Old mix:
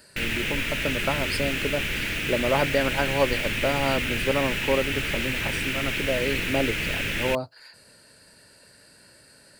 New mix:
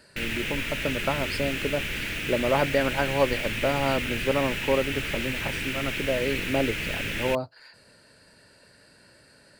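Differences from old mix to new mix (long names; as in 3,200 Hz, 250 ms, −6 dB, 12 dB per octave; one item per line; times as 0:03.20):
speech: add high-shelf EQ 7,000 Hz −12 dB
background −3.0 dB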